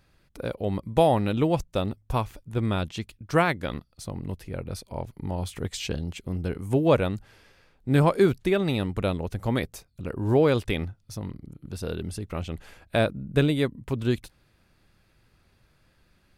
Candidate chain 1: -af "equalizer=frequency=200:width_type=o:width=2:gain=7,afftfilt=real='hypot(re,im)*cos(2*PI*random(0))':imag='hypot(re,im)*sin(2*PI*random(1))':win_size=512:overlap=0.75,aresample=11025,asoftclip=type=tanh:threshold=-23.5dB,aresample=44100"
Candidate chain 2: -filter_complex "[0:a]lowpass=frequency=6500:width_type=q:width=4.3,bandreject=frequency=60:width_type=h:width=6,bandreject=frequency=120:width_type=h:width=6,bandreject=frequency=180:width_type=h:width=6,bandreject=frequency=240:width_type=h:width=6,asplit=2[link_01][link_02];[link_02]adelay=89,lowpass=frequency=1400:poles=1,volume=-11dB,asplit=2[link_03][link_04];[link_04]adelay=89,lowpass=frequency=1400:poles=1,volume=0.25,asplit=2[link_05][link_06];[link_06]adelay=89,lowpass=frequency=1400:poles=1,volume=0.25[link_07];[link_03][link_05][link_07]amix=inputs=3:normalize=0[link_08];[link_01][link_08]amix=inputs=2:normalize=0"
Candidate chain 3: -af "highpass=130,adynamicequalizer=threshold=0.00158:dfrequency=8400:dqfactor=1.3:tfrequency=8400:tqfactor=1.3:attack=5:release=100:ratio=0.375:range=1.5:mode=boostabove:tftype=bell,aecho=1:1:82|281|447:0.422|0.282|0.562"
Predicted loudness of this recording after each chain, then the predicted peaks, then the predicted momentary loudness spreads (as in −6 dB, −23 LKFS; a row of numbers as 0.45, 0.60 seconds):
−33.5, −27.0, −26.0 LKFS; −23.0, −8.0, −7.0 dBFS; 11, 14, 14 LU